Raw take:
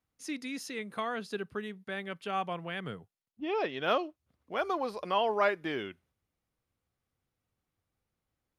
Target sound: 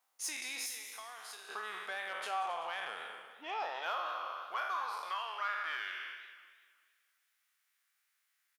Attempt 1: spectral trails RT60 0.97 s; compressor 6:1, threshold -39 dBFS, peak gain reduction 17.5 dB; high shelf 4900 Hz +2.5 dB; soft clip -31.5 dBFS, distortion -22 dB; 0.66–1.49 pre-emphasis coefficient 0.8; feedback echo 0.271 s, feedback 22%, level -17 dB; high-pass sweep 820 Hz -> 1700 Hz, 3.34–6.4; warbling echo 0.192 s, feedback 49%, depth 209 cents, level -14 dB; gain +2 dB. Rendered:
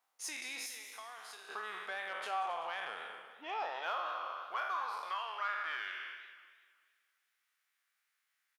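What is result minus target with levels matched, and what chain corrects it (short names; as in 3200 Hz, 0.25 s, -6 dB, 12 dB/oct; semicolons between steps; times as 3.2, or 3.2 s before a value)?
8000 Hz band -3.5 dB
spectral trails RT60 0.97 s; compressor 6:1, threshold -39 dBFS, peak gain reduction 17.5 dB; high shelf 4900 Hz +9 dB; soft clip -31.5 dBFS, distortion -21 dB; 0.66–1.49 pre-emphasis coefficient 0.8; feedback echo 0.271 s, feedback 22%, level -17 dB; high-pass sweep 820 Hz -> 1700 Hz, 3.34–6.4; warbling echo 0.192 s, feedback 49%, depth 209 cents, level -14 dB; gain +2 dB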